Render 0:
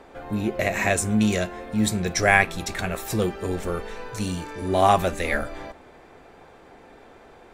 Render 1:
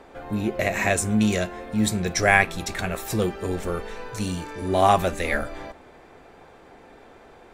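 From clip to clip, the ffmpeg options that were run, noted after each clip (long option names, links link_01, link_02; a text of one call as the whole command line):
ffmpeg -i in.wav -af anull out.wav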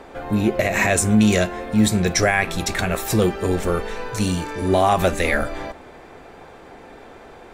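ffmpeg -i in.wav -af "alimiter=limit=-13.5dB:level=0:latency=1:release=67,volume=6.5dB" out.wav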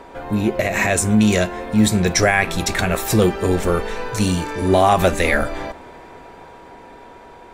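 ffmpeg -i in.wav -af "dynaudnorm=framelen=320:gausssize=11:maxgain=3.5dB,aeval=exprs='val(0)+0.00631*sin(2*PI*960*n/s)':channel_layout=same" out.wav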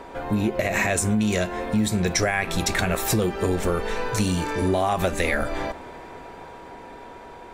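ffmpeg -i in.wav -af "acompressor=threshold=-19dB:ratio=6" out.wav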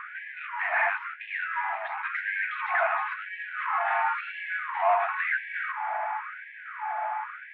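ffmpeg -i in.wav -filter_complex "[0:a]asplit=2[link_01][link_02];[link_02]highpass=frequency=720:poles=1,volume=28dB,asoftclip=type=tanh:threshold=-8dB[link_03];[link_01][link_03]amix=inputs=2:normalize=0,lowpass=frequency=1000:poles=1,volume=-6dB,highpass=frequency=530:width_type=q:width=0.5412,highpass=frequency=530:width_type=q:width=1.307,lowpass=frequency=2500:width_type=q:width=0.5176,lowpass=frequency=2500:width_type=q:width=0.7071,lowpass=frequency=2500:width_type=q:width=1.932,afreqshift=-97,afftfilt=real='re*gte(b*sr/1024,610*pow(1600/610,0.5+0.5*sin(2*PI*0.96*pts/sr)))':imag='im*gte(b*sr/1024,610*pow(1600/610,0.5+0.5*sin(2*PI*0.96*pts/sr)))':win_size=1024:overlap=0.75,volume=-2.5dB" out.wav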